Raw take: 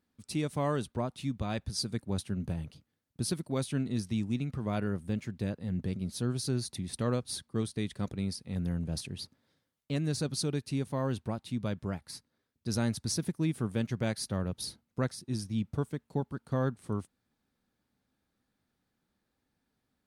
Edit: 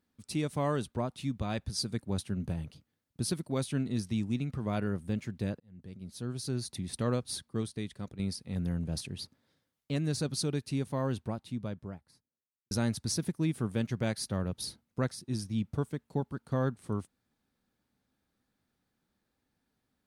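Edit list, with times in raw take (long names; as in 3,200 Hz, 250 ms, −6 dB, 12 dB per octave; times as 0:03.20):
0:05.60–0:06.85: fade in linear
0:07.37–0:08.19: fade out, to −8.5 dB
0:10.98–0:12.71: fade out and dull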